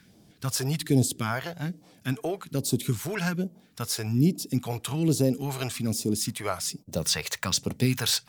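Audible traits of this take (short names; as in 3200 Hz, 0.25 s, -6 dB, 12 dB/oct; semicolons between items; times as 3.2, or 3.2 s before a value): phasing stages 2, 1.2 Hz, lowest notch 210–1600 Hz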